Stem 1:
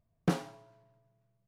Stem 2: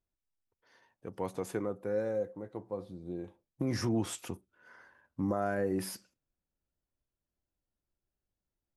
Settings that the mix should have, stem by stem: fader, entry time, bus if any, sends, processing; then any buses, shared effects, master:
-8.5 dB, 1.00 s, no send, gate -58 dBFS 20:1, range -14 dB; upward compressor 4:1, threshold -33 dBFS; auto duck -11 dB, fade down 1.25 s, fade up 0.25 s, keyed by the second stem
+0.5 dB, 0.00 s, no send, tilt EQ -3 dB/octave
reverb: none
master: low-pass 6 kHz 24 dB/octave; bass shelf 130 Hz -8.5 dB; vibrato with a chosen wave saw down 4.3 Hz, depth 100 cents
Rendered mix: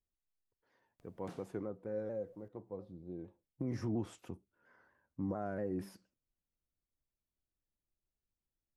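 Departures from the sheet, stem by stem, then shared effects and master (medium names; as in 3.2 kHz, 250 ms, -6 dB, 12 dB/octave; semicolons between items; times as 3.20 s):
stem 2 +0.5 dB -> -9.5 dB; master: missing low-pass 6 kHz 24 dB/octave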